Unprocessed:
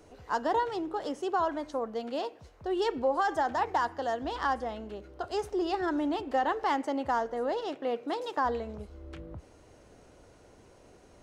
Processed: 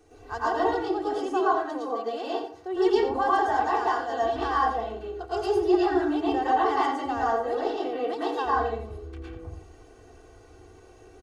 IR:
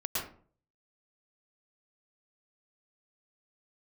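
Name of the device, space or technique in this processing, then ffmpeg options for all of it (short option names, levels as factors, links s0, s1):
microphone above a desk: -filter_complex "[0:a]asettb=1/sr,asplit=3[s0][s1][s2];[s0]atrim=end=1.254[s3];[s1]atrim=start=1.25:end=2.76,asetpts=PTS-STARTPTS,afade=t=in:d=0.004:c=qsin,afade=t=out:st=1.506:d=0.004:c=qsin,highpass=210[s4];[s2]atrim=start=2.756[s5];[s3][s4]acrossfade=d=0.004:c1=hsin:c2=qsin[s6];[s6][s5]acrossfade=d=0.004:c1=qsin:c2=hsin,aecho=1:1:2.6:0.82[s7];[1:a]atrim=start_sample=2205[s8];[s7][s8]afir=irnorm=-1:irlink=0,aecho=1:1:87:0.282,volume=0.668"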